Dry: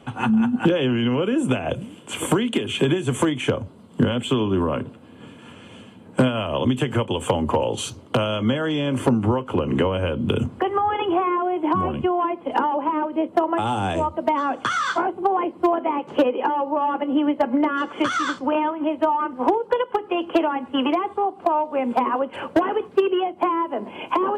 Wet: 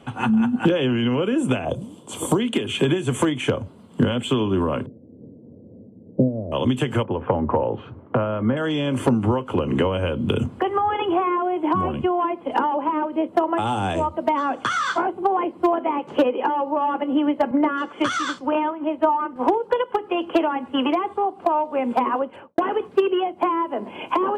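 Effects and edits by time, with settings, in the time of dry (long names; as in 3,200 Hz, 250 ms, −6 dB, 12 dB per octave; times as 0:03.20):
0:01.65–0:02.40: flat-topped bell 2,000 Hz −12 dB 1.3 octaves
0:04.86–0:06.52: Butterworth low-pass 560 Hz
0:07.03–0:08.57: low-pass filter 1,800 Hz 24 dB per octave
0:17.51–0:19.36: multiband upward and downward expander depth 70%
0:22.14–0:22.58: fade out and dull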